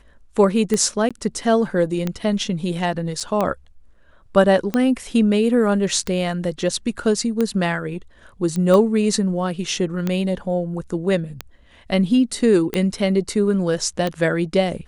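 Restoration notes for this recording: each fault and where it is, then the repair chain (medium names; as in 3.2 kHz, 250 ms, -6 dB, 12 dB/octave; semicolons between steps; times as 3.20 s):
tick 45 rpm -9 dBFS
1.09–1.11 s: dropout 16 ms
3.20–3.21 s: dropout 6.1 ms
8.56 s: pop -14 dBFS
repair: de-click; interpolate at 1.09 s, 16 ms; interpolate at 3.20 s, 6.1 ms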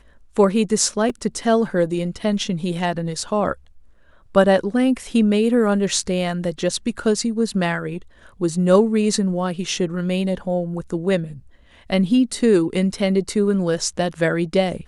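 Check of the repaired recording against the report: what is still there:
nothing left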